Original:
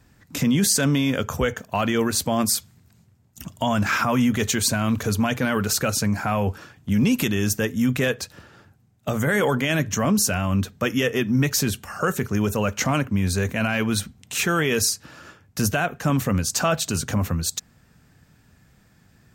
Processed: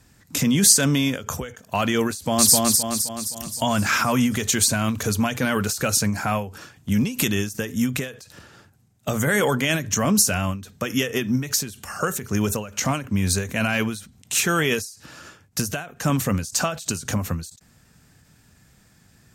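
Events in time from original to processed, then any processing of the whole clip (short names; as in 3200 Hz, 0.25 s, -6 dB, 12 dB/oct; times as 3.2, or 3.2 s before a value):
2.12–2.56 echo throw 0.26 s, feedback 55%, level -0.5 dB
whole clip: LPF 12000 Hz 12 dB/oct; high shelf 5000 Hz +11 dB; ending taper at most 120 dB/s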